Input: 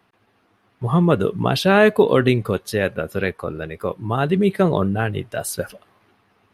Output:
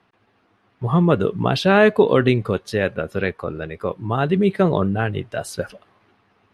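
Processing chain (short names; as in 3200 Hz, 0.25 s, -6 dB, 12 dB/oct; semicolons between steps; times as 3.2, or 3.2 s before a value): Bessel low-pass 5900 Hz, order 2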